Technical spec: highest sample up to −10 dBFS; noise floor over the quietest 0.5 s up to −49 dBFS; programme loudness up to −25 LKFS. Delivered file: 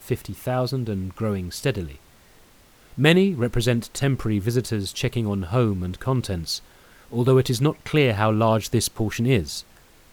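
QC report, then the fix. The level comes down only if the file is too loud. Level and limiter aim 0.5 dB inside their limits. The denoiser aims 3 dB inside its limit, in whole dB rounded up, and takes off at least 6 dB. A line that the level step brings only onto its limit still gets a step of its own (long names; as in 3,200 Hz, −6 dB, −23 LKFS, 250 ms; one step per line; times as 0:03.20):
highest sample −4.5 dBFS: out of spec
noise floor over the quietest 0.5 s −53 dBFS: in spec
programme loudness −23.0 LKFS: out of spec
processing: level −2.5 dB
brickwall limiter −10.5 dBFS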